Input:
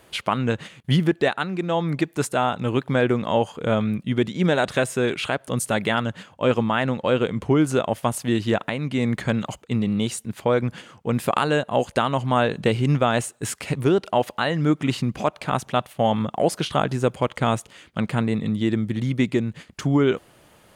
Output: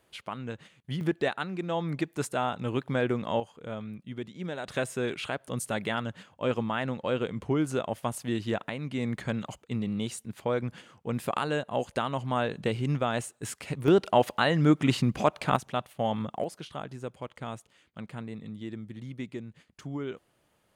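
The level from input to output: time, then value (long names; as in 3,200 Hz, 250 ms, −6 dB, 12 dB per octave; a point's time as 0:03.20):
−14.5 dB
from 0:01.01 −7.5 dB
from 0:03.40 −16 dB
from 0:04.68 −8.5 dB
from 0:13.88 −1.5 dB
from 0:15.56 −8.5 dB
from 0:16.44 −16.5 dB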